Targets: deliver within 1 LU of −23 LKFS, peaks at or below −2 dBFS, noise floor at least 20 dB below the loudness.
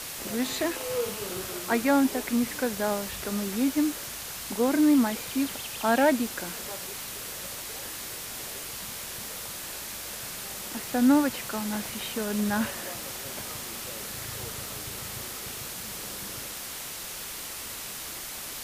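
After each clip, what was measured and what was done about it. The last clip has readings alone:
background noise floor −38 dBFS; target noise floor −50 dBFS; integrated loudness −29.5 LKFS; sample peak −10.5 dBFS; target loudness −23.0 LKFS
→ broadband denoise 12 dB, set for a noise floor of −38 dBFS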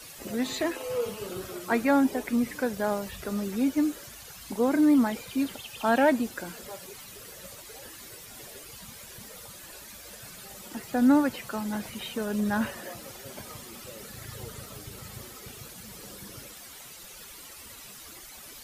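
background noise floor −46 dBFS; target noise floor −48 dBFS
→ broadband denoise 6 dB, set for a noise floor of −46 dBFS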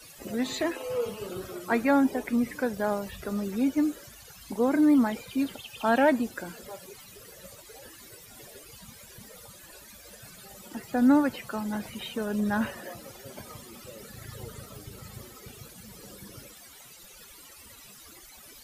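background noise floor −50 dBFS; integrated loudness −27.5 LKFS; sample peak −10.5 dBFS; target loudness −23.0 LKFS
→ level +4.5 dB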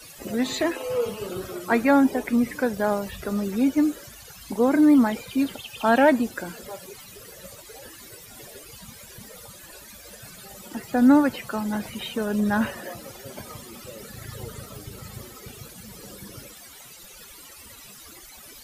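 integrated loudness −23.0 LKFS; sample peak −6.0 dBFS; background noise floor −46 dBFS

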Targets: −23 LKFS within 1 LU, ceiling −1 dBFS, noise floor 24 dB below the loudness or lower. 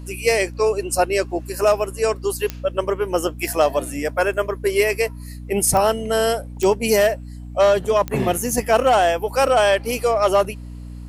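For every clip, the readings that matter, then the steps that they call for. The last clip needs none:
number of clicks 4; mains hum 60 Hz; hum harmonics up to 300 Hz; level of the hum −32 dBFS; integrated loudness −19.5 LKFS; sample peak −6.0 dBFS; target loudness −23.0 LKFS
→ click removal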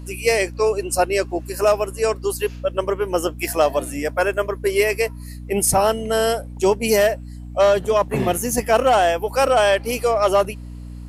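number of clicks 0; mains hum 60 Hz; hum harmonics up to 300 Hz; level of the hum −32 dBFS
→ mains-hum notches 60/120/180/240/300 Hz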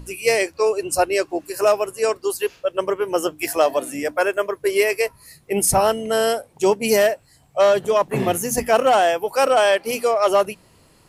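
mains hum none found; integrated loudness −20.0 LKFS; sample peak −5.5 dBFS; target loudness −23.0 LKFS
→ level −3 dB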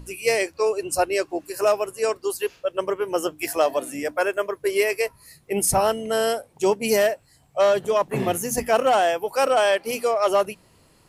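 integrated loudness −23.0 LKFS; sample peak −8.5 dBFS; background noise floor −58 dBFS

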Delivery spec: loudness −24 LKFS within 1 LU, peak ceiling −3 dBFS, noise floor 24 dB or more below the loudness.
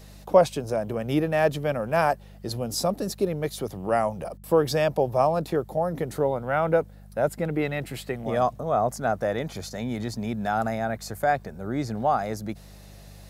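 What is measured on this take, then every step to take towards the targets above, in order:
mains hum 50 Hz; hum harmonics up to 200 Hz; level of the hum −45 dBFS; integrated loudness −26.0 LKFS; sample peak −5.5 dBFS; target loudness −24.0 LKFS
→ hum removal 50 Hz, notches 4
level +2 dB

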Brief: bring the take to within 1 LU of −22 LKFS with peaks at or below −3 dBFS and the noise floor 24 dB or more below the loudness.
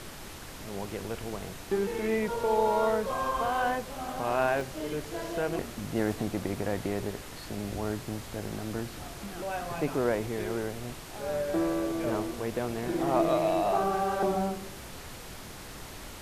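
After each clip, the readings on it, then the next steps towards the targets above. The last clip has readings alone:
number of dropouts 5; longest dropout 1.3 ms; background noise floor −44 dBFS; target noise floor −55 dBFS; integrated loudness −31.0 LKFS; sample peak −13.0 dBFS; target loudness −22.0 LKFS
→ repair the gap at 0:00.71/0:01.98/0:04.61/0:07.75/0:08.51, 1.3 ms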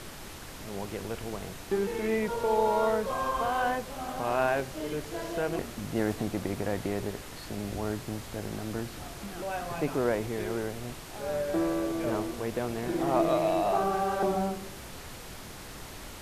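number of dropouts 0; background noise floor −44 dBFS; target noise floor −55 dBFS
→ noise reduction from a noise print 11 dB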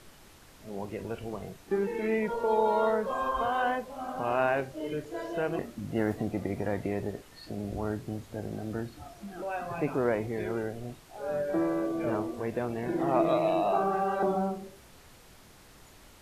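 background noise floor −55 dBFS; integrated loudness −31.0 LKFS; sample peak −13.5 dBFS; target loudness −22.0 LKFS
→ level +9 dB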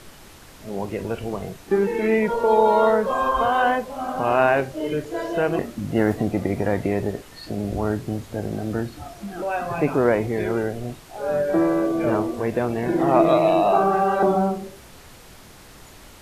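integrated loudness −22.0 LKFS; sample peak −4.5 dBFS; background noise floor −46 dBFS

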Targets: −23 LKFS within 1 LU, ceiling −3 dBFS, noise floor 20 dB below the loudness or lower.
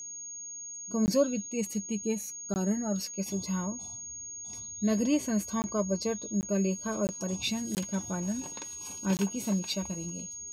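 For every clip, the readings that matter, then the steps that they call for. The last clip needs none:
number of dropouts 7; longest dropout 19 ms; interfering tone 6,600 Hz; level of the tone −39 dBFS; integrated loudness −32.0 LKFS; sample peak −14.0 dBFS; target loudness −23.0 LKFS
→ repair the gap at 0:01.06/0:02.54/0:05.62/0:06.41/0:07.07/0:07.75/0:09.17, 19 ms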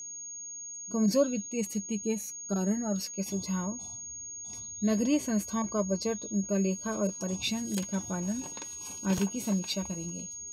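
number of dropouts 0; interfering tone 6,600 Hz; level of the tone −39 dBFS
→ notch filter 6,600 Hz, Q 30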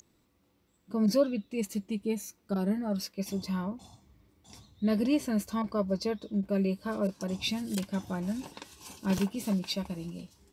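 interfering tone none found; integrated loudness −32.0 LKFS; sample peak −14.5 dBFS; target loudness −23.0 LKFS
→ level +9 dB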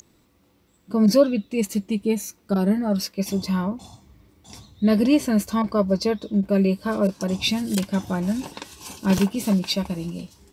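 integrated loudness −23.0 LKFS; sample peak −5.5 dBFS; background noise floor −61 dBFS

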